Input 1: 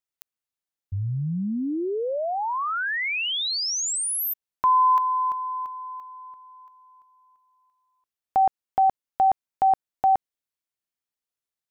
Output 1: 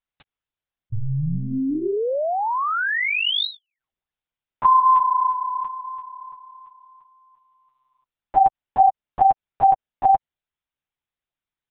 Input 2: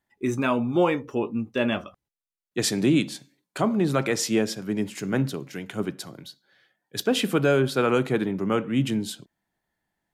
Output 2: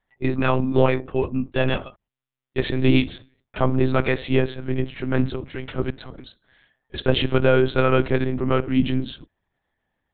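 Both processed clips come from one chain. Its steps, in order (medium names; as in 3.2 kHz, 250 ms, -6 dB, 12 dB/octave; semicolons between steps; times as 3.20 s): monotone LPC vocoder at 8 kHz 130 Hz; trim +4 dB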